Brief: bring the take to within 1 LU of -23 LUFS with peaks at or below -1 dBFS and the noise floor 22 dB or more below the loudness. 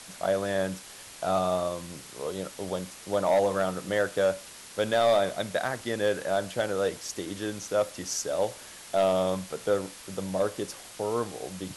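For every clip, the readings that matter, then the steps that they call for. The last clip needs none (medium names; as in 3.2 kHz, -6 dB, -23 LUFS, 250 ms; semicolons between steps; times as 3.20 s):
clipped samples 0.4%; clipping level -16.5 dBFS; noise floor -46 dBFS; noise floor target -51 dBFS; loudness -29.0 LUFS; peak level -16.5 dBFS; loudness target -23.0 LUFS
-> clip repair -16.5 dBFS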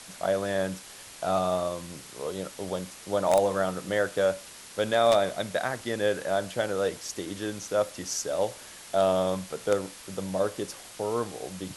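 clipped samples 0.0%; noise floor -46 dBFS; noise floor target -51 dBFS
-> noise reduction 6 dB, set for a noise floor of -46 dBFS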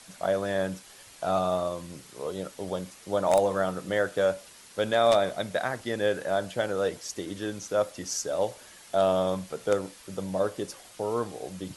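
noise floor -51 dBFS; loudness -29.0 LUFS; peak level -7.5 dBFS; loudness target -23.0 LUFS
-> trim +6 dB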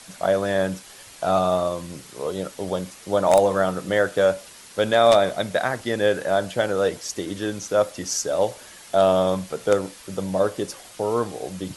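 loudness -23.0 LUFS; peak level -1.5 dBFS; noise floor -45 dBFS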